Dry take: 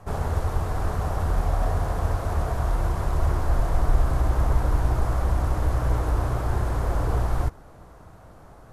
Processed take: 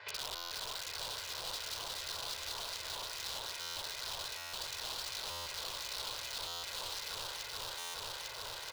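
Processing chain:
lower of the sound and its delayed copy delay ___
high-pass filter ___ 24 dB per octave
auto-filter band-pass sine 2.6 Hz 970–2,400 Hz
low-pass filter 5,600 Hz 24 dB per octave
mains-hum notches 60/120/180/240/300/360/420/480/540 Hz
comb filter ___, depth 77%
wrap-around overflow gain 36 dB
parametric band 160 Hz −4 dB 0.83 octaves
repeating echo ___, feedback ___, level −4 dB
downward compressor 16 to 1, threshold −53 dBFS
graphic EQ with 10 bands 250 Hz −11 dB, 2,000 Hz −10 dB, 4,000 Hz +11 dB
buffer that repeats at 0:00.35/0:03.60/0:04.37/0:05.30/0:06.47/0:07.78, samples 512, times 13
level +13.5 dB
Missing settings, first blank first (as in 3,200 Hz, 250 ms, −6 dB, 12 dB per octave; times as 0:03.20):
0.41 ms, 80 Hz, 2 ms, 425 ms, 56%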